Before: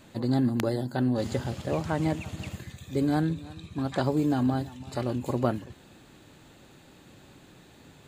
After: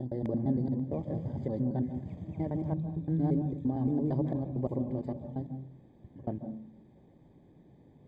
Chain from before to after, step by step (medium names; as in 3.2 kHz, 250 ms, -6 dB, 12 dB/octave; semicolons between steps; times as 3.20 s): slices played last to first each 114 ms, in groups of 8; boxcar filter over 32 samples; on a send: reverberation RT60 0.45 s, pre-delay 136 ms, DRR 12 dB; on the sum: trim -4.5 dB